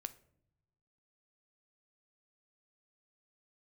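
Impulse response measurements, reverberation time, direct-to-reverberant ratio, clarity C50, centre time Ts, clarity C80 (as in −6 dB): non-exponential decay, 11.5 dB, 17.5 dB, 3 ms, 21.5 dB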